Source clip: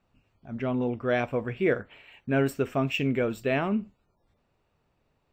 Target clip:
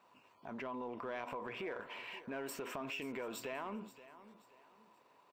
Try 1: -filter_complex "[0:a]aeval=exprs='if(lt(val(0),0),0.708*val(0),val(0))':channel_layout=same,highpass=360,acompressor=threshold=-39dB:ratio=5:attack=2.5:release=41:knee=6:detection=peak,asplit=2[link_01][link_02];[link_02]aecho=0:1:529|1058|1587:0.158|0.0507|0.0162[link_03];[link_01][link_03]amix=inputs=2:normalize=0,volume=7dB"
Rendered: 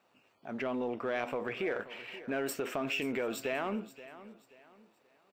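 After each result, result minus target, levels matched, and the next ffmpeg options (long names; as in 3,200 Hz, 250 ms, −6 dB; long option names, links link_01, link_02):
downward compressor: peak gain reduction −9 dB; 1,000 Hz band −3.5 dB
-filter_complex "[0:a]aeval=exprs='if(lt(val(0),0),0.708*val(0),val(0))':channel_layout=same,highpass=360,acompressor=threshold=-50dB:ratio=5:attack=2.5:release=41:knee=6:detection=peak,asplit=2[link_01][link_02];[link_02]aecho=0:1:529|1058|1587:0.158|0.0507|0.0162[link_03];[link_01][link_03]amix=inputs=2:normalize=0,volume=7dB"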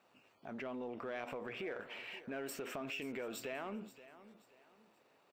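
1,000 Hz band −3.5 dB
-filter_complex "[0:a]aeval=exprs='if(lt(val(0),0),0.708*val(0),val(0))':channel_layout=same,highpass=360,equalizer=frequency=1000:width=6.6:gain=14.5,acompressor=threshold=-50dB:ratio=5:attack=2.5:release=41:knee=6:detection=peak,asplit=2[link_01][link_02];[link_02]aecho=0:1:529|1058|1587:0.158|0.0507|0.0162[link_03];[link_01][link_03]amix=inputs=2:normalize=0,volume=7dB"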